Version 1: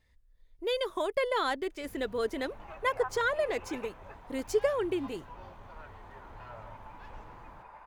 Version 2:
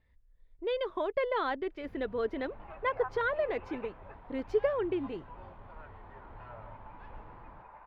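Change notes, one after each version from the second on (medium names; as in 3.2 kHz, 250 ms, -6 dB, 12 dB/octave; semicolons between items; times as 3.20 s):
master: add distance through air 340 m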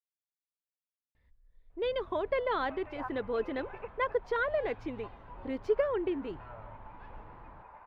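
speech: entry +1.15 s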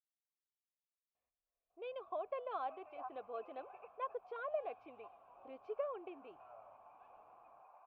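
master: add vowel filter a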